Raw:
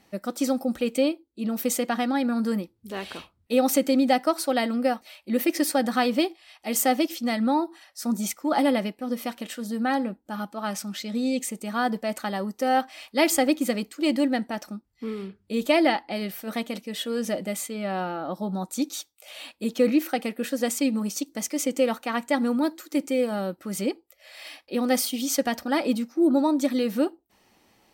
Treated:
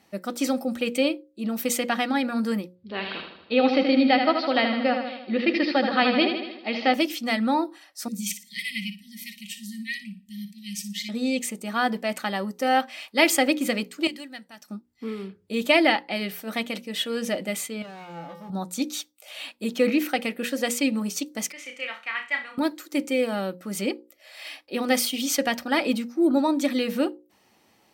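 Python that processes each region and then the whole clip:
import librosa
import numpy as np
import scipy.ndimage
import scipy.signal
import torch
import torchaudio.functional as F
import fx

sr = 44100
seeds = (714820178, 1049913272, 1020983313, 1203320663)

y = fx.chain(x, sr, fx.steep_lowpass(hz=4800.0, slope=72),
    fx.echo_feedback(ms=78, feedback_pct=58, wet_db=-6.5), at=(2.75, 6.94))
y = fx.chain(y, sr, fx.brickwall_bandstop(low_hz=220.0, high_hz=1800.0),
    fx.room_flutter(wall_m=10.0, rt60_s=0.34),
    fx.notch_cascade(direction='rising', hz=1.6), at=(8.08, 11.09))
y = fx.chain(y, sr, fx.tone_stack(knobs='5-5-5'),
    fx.notch(hz=2200.0, q=25.0), at=(14.07, 14.7))
y = fx.chain(y, sr, fx.leveller(passes=3),
    fx.comb_fb(f0_hz=170.0, decay_s=0.67, harmonics='odd', damping=0.0, mix_pct=90), at=(17.82, 18.5))
y = fx.chain(y, sr, fx.bandpass_q(hz=2100.0, q=2.1),
    fx.room_flutter(wall_m=5.5, rt60_s=0.32), at=(21.52, 22.58))
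y = scipy.signal.sosfilt(scipy.signal.butter(2, 79.0, 'highpass', fs=sr, output='sos'), y)
y = fx.hum_notches(y, sr, base_hz=60, count=9)
y = fx.dynamic_eq(y, sr, hz=2500.0, q=1.0, threshold_db=-45.0, ratio=4.0, max_db=7)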